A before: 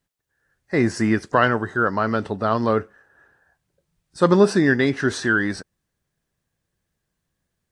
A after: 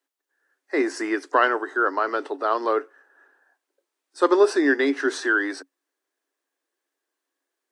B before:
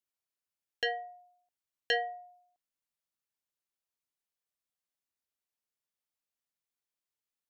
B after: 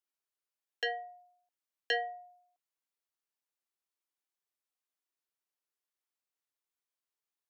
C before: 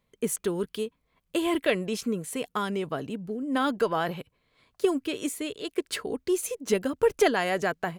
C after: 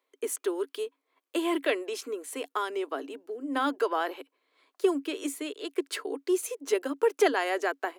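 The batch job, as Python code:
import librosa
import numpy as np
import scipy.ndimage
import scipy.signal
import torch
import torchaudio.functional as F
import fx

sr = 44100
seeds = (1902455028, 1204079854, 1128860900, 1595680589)

y = scipy.signal.sosfilt(scipy.signal.cheby1(6, 3, 270.0, 'highpass', fs=sr, output='sos'), x)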